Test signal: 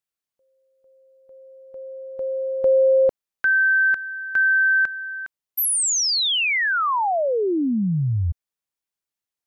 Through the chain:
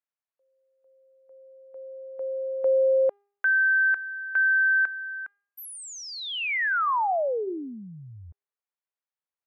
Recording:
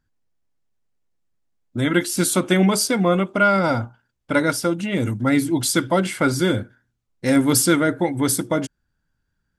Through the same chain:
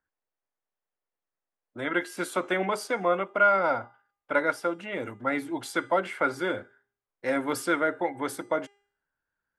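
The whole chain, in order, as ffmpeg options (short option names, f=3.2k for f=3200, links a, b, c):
-filter_complex "[0:a]acrossover=split=410 2500:gain=0.1 1 0.141[a][b][c];[a][b][c]amix=inputs=3:normalize=0,bandreject=f=403.7:t=h:w=4,bandreject=f=807.4:t=h:w=4,bandreject=f=1.2111k:t=h:w=4,bandreject=f=1.6148k:t=h:w=4,bandreject=f=2.0185k:t=h:w=4,bandreject=f=2.4222k:t=h:w=4,bandreject=f=2.8259k:t=h:w=4,bandreject=f=3.2296k:t=h:w=4,bandreject=f=3.6333k:t=h:w=4,bandreject=f=4.037k:t=h:w=4,bandreject=f=4.4407k:t=h:w=4,bandreject=f=4.8444k:t=h:w=4,bandreject=f=5.2481k:t=h:w=4,bandreject=f=5.6518k:t=h:w=4,bandreject=f=6.0555k:t=h:w=4,bandreject=f=6.4592k:t=h:w=4,bandreject=f=6.8629k:t=h:w=4,bandreject=f=7.2666k:t=h:w=4,bandreject=f=7.6703k:t=h:w=4,bandreject=f=8.074k:t=h:w=4,bandreject=f=8.4777k:t=h:w=4,bandreject=f=8.8814k:t=h:w=4,volume=-2.5dB"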